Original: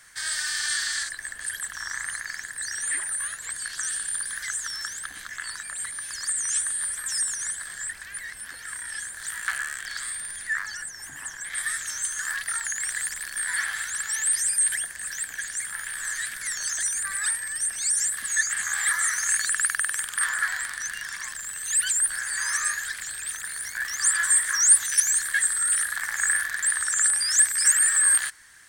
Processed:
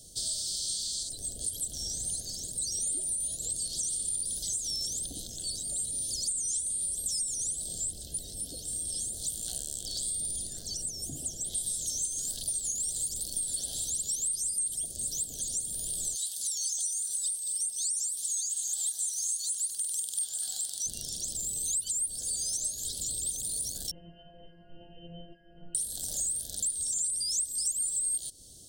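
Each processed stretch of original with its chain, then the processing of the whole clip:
16.15–20.86 steep high-pass 770 Hz + lo-fi delay 0.22 s, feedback 35%, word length 8-bit, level -12 dB
23.91–25.75 brick-wall FIR low-pass 3100 Hz + metallic resonator 170 Hz, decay 0.6 s, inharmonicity 0.002 + fast leveller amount 70%
whole clip: inverse Chebyshev band-stop 930–2400 Hz, stop band 40 dB; tilt shelf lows +4.5 dB; compressor 6:1, threshold -37 dBFS; gain +7.5 dB

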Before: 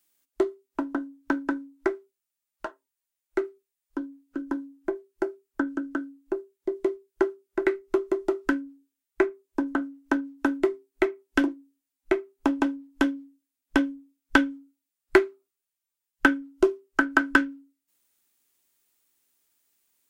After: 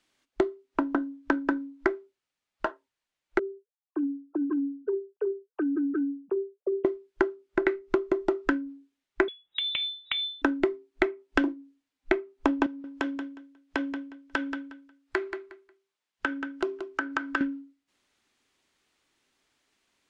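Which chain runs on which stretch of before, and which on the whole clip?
3.39–6.85 sine-wave speech + running mean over 21 samples + compressor 4:1, threshold -31 dBFS
9.28–10.42 compressor 10:1, threshold -29 dBFS + hard clip -25.5 dBFS + inverted band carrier 3800 Hz
12.66–17.41 HPF 340 Hz 6 dB/oct + compressor 2:1, threshold -40 dBFS + feedback echo 0.18 s, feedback 22%, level -11 dB
whole clip: compressor 3:1, threshold -32 dBFS; LPF 4000 Hz 12 dB/oct; gain +8 dB

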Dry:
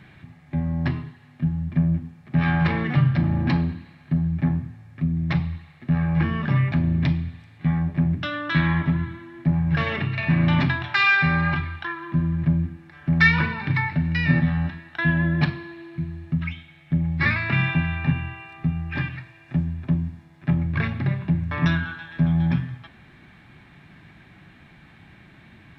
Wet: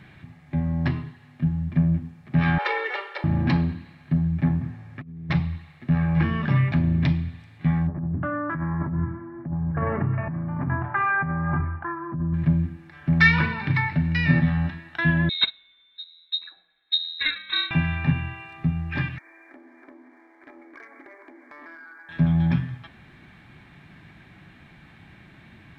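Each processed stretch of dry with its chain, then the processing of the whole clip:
2.58–3.24 steep high-pass 380 Hz 96 dB/oct + comb 2.2 ms, depth 78%
4.61–5.3 HPF 130 Hz 6 dB/oct + negative-ratio compressor -32 dBFS, ratio -0.5 + high shelf 4700 Hz -10 dB
7.87–12.34 inverse Chebyshev low-pass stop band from 4500 Hz, stop band 60 dB + negative-ratio compressor -25 dBFS
15.29–17.71 Butterworth band-stop 920 Hz, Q 2.7 + inverted band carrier 3900 Hz + upward expander 2.5:1, over -29 dBFS
19.18–22.09 brick-wall FIR band-pass 260–2400 Hz + compressor 3:1, threshold -51 dBFS + sample leveller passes 1
whole clip: dry

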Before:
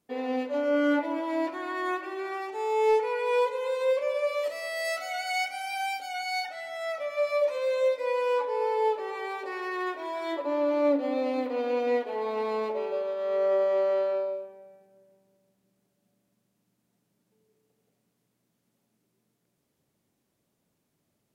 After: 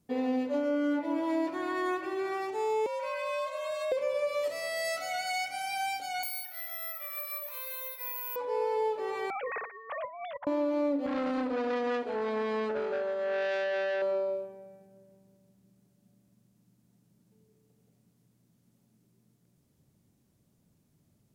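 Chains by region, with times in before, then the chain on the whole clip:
2.86–3.92 HPF 790 Hz 6 dB/oct + compressor 3:1, threshold -30 dBFS + frequency shift +95 Hz
6.23–8.36 HPF 910 Hz 24 dB/oct + careless resampling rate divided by 3×, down filtered, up zero stuff
9.3–10.47 sine-wave speech + negative-ratio compressor -38 dBFS, ratio -0.5
11.06–14.02 LPF 9800 Hz 24 dB/oct + core saturation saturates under 1600 Hz
whole clip: tone controls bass +13 dB, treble +11 dB; compressor, threshold -26 dBFS; high shelf 3500 Hz -9 dB

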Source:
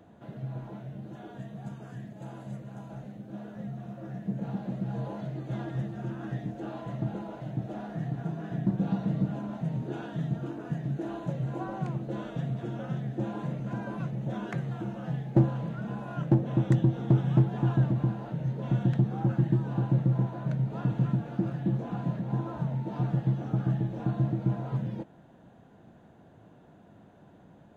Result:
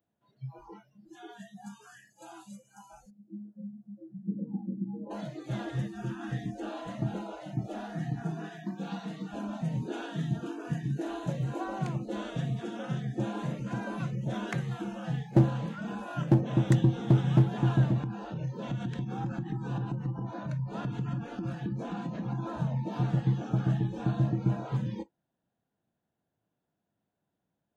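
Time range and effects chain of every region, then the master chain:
3.1–5.11 band-pass 240 Hz, Q 0.8 + feedback echo 83 ms, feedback 60%, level -15.5 dB
8.49–9.34 low shelf 410 Hz -10 dB + notches 60/120/180/240/300 Hz
18.02–22.61 compressor 12:1, threshold -29 dBFS + echo 0.329 s -10 dB
whole clip: spectral noise reduction 29 dB; high shelf 2200 Hz +10 dB

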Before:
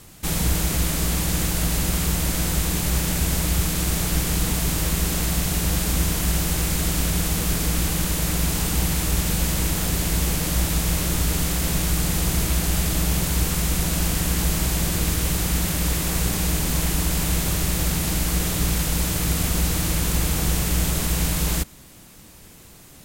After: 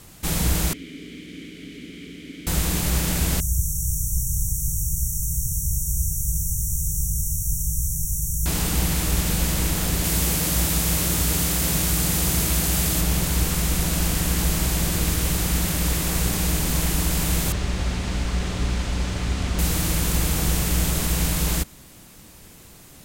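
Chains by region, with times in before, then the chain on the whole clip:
0.73–2.47 vowel filter i + bell 420 Hz +13 dB 0.29 oct
3.4–8.46 brick-wall FIR band-stop 160–5500 Hz + echo with dull and thin repeats by turns 0.258 s, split 1200 Hz, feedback 51%, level -11 dB
10.04–13.01 HPF 52 Hz + high shelf 5400 Hz +4.5 dB
17.52–19.59 air absorption 110 m + notch comb 160 Hz
whole clip: dry

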